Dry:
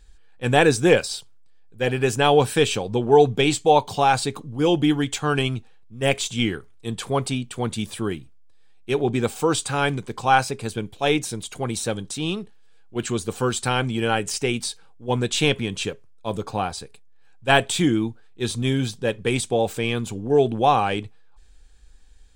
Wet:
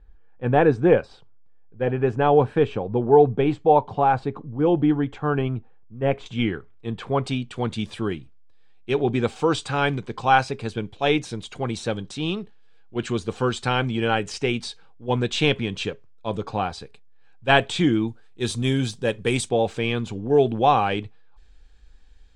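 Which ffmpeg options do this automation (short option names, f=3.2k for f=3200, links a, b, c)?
-af "asetnsamples=n=441:p=0,asendcmd='6.26 lowpass f 2400;7.24 lowpass f 4400;18.08 lowpass f 9900;19.49 lowpass f 4500',lowpass=1.3k"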